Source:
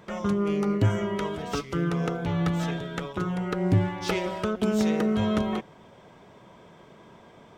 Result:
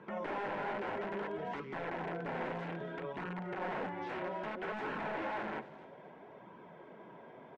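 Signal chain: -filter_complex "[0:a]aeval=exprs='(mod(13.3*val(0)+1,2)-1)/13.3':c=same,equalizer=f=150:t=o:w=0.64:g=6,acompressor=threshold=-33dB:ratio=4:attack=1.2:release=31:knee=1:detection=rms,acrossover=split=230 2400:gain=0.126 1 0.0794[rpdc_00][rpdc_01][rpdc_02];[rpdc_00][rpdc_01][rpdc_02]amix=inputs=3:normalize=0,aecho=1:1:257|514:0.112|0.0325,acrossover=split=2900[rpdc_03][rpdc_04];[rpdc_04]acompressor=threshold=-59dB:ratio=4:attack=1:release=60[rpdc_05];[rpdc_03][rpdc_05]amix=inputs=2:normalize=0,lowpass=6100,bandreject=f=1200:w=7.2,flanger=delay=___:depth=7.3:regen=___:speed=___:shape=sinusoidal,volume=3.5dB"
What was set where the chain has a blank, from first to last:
0.7, -42, 0.61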